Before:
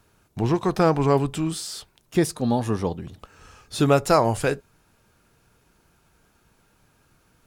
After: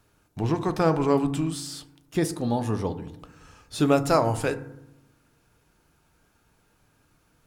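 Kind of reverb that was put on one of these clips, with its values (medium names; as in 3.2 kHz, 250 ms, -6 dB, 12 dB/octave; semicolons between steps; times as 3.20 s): FDN reverb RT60 0.84 s, low-frequency decay 1.45×, high-frequency decay 0.4×, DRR 10 dB; trim -3.5 dB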